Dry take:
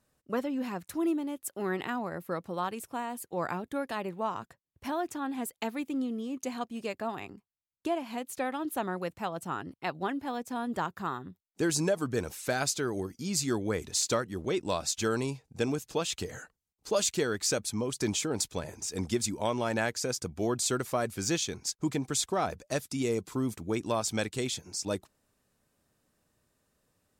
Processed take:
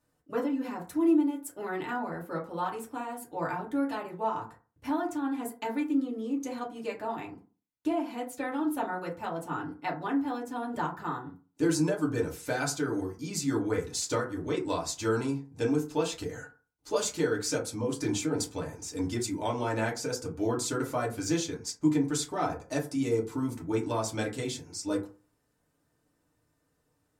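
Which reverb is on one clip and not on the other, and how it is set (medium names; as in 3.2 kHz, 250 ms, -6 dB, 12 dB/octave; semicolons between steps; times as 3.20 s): FDN reverb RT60 0.36 s, low-frequency decay 1.05×, high-frequency decay 0.4×, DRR -4 dB; trim -6 dB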